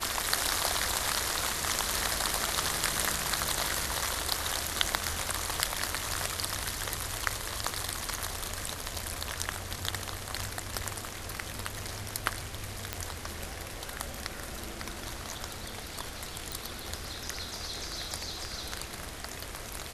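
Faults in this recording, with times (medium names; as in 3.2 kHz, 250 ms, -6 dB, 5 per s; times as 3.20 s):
12.93 s: pop -13 dBFS
16.52 s: pop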